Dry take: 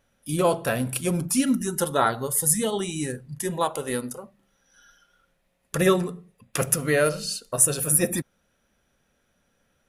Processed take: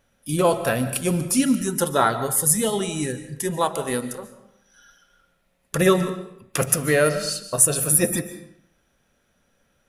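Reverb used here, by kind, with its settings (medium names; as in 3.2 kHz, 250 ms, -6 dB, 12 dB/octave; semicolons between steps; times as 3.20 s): algorithmic reverb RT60 0.71 s, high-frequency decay 0.85×, pre-delay 100 ms, DRR 12 dB; trim +2.5 dB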